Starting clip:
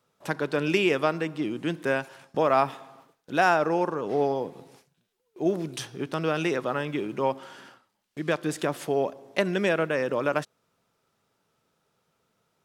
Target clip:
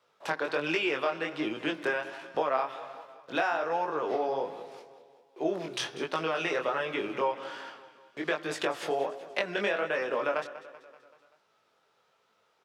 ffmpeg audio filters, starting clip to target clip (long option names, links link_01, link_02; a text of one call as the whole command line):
ffmpeg -i in.wav -filter_complex "[0:a]acrossover=split=410 5500:gain=0.158 1 0.224[link_01][link_02][link_03];[link_01][link_02][link_03]amix=inputs=3:normalize=0,acompressor=threshold=-31dB:ratio=6,aecho=1:1:192|384|576|768|960:0.168|0.094|0.0526|0.0295|0.0165,flanger=delay=18:depth=6.7:speed=1.3,volume=8dB" out.wav